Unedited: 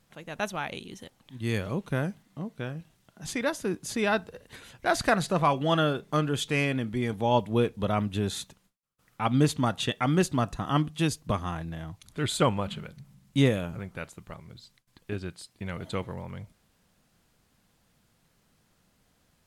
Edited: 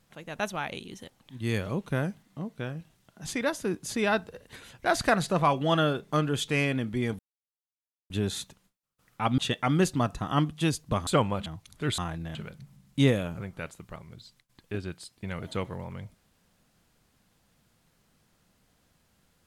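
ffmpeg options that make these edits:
ffmpeg -i in.wav -filter_complex "[0:a]asplit=8[link_01][link_02][link_03][link_04][link_05][link_06][link_07][link_08];[link_01]atrim=end=7.19,asetpts=PTS-STARTPTS,afade=type=out:start_time=7.186:duration=0.004:curve=hsin[link_09];[link_02]atrim=start=7.19:end=8.1,asetpts=PTS-STARTPTS,volume=0[link_10];[link_03]atrim=start=8.1:end=9.382,asetpts=PTS-STARTPTS,afade=type=in:duration=0.004:curve=hsin[link_11];[link_04]atrim=start=9.758:end=11.452[link_12];[link_05]atrim=start=12.338:end=12.732[link_13];[link_06]atrim=start=11.818:end=12.342[link_14];[link_07]atrim=start=11.448:end=11.822[link_15];[link_08]atrim=start=12.728[link_16];[link_09][link_10][link_11]concat=n=3:v=0:a=1[link_17];[link_17][link_12]acrossfade=duration=0.004:curve1=hsin:curve2=hsin[link_18];[link_18][link_13]acrossfade=duration=0.004:curve1=hsin:curve2=hsin[link_19];[link_19][link_14]acrossfade=duration=0.004:curve1=hsin:curve2=hsin[link_20];[link_20][link_15]acrossfade=duration=0.004:curve1=hsin:curve2=hsin[link_21];[link_21][link_16]acrossfade=duration=0.004:curve1=hsin:curve2=hsin" out.wav

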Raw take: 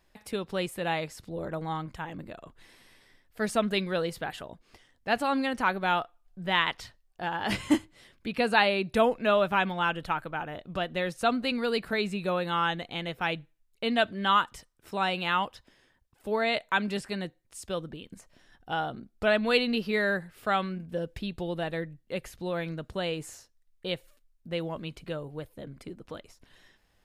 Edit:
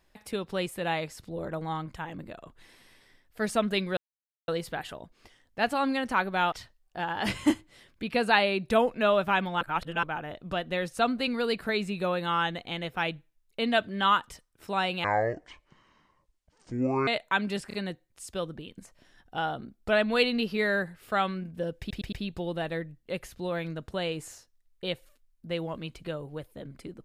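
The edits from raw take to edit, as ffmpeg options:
ffmpeg -i in.wav -filter_complex "[0:a]asplit=12[link_01][link_02][link_03][link_04][link_05][link_06][link_07][link_08][link_09][link_10][link_11][link_12];[link_01]atrim=end=3.97,asetpts=PTS-STARTPTS,afade=type=out:start_time=3.966:duration=0.004:curve=hsin,apad=pad_dur=0.51[link_13];[link_02]atrim=start=3.97:end=6.012,asetpts=PTS-STARTPTS,afade=type=in:duration=0.004:curve=hsin[link_14];[link_03]atrim=start=6.758:end=9.852[link_15];[link_04]atrim=start=9.848:end=10.272,asetpts=PTS-STARTPTS,areverse[link_16];[link_05]atrim=start=10.268:end=15.284[link_17];[link_06]atrim=start=15.28:end=16.48,asetpts=PTS-STARTPTS,asetrate=26019,aresample=44100[link_18];[link_07]atrim=start=16.476:end=17.112[link_19];[link_08]atrim=start=17.078:end=17.112[link_20];[link_09]atrim=start=17.078:end=21.252[link_21];[link_10]atrim=start=21.138:end=21.252[link_22];[link_11]atrim=start=21.138:end=21.252[link_23];[link_12]atrim=start=21.138[link_24];[link_13][link_14]concat=n=2:v=0:a=1[link_25];[link_25][link_15]acrossfade=duration=0.004:curve1=hsin:curve2=hsin[link_26];[link_26][link_16]acrossfade=duration=0.004:curve1=hsin:curve2=hsin[link_27];[link_27][link_17]acrossfade=duration=0.004:curve1=hsin:curve2=hsin[link_28];[link_28][link_18]acrossfade=duration=0.004:curve1=hsin:curve2=hsin[link_29];[link_29][link_19]acrossfade=duration=0.004:curve1=hsin:curve2=hsin[link_30];[link_30][link_20]acrossfade=duration=0.004:curve1=hsin:curve2=hsin[link_31];[link_31][link_21]acrossfade=duration=0.004:curve1=hsin:curve2=hsin[link_32];[link_32][link_22]acrossfade=duration=0.004:curve1=hsin:curve2=hsin[link_33];[link_33][link_23]acrossfade=duration=0.004:curve1=hsin:curve2=hsin[link_34];[link_34][link_24]acrossfade=duration=0.004:curve1=hsin:curve2=hsin" out.wav

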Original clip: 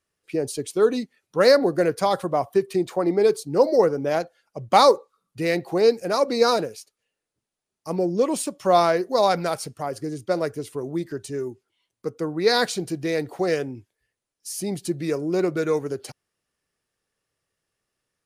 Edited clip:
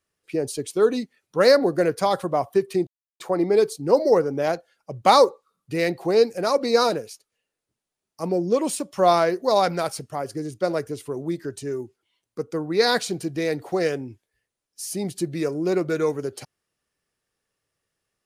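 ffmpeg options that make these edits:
ffmpeg -i in.wav -filter_complex "[0:a]asplit=2[link_01][link_02];[link_01]atrim=end=2.87,asetpts=PTS-STARTPTS,afade=type=out:start_time=2.866:duration=0.004:curve=hsin,apad=pad_dur=0.33[link_03];[link_02]atrim=start=2.87,asetpts=PTS-STARTPTS,afade=type=in:duration=0.004:curve=hsin[link_04];[link_03][link_04]concat=n=2:v=0:a=1" out.wav

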